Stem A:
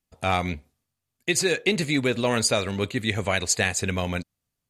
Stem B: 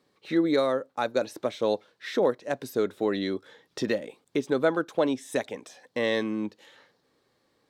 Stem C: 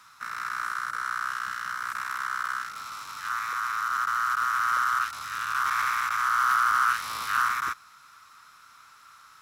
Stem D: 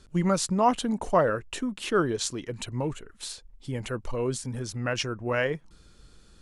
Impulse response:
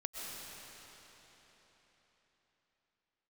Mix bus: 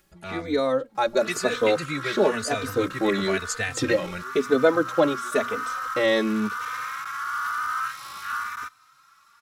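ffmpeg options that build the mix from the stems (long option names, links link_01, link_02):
-filter_complex "[0:a]acompressor=mode=upward:threshold=-28dB:ratio=2.5,equalizer=frequency=1500:width_type=o:width=0.77:gain=8,volume=-12dB[link_01];[1:a]bandreject=frequency=60:width_type=h:width=6,bandreject=frequency=120:width_type=h:width=6,bandreject=frequency=180:width_type=h:width=6,bandreject=frequency=240:width_type=h:width=6,volume=0dB[link_02];[2:a]adelay=950,volume=-10dB[link_03];[3:a]lowpass=4300,acompressor=threshold=-33dB:ratio=6,volume=-16dB[link_04];[link_01][link_02][link_03][link_04]amix=inputs=4:normalize=0,dynaudnorm=framelen=280:gausssize=5:maxgain=8dB,asplit=2[link_05][link_06];[link_06]adelay=3.2,afreqshift=0.99[link_07];[link_05][link_07]amix=inputs=2:normalize=1"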